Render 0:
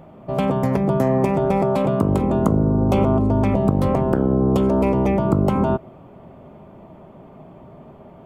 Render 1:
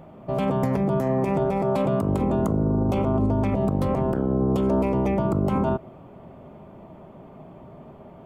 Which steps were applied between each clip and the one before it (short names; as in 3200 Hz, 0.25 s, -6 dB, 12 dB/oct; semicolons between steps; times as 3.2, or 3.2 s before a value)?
limiter -13 dBFS, peak gain reduction 8.5 dB; gain -1.5 dB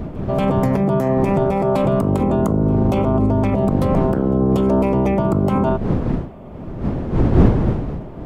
wind noise 230 Hz -28 dBFS; pre-echo 0.235 s -23.5 dB; gain +5.5 dB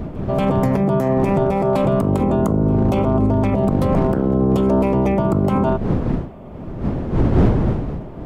overloaded stage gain 9 dB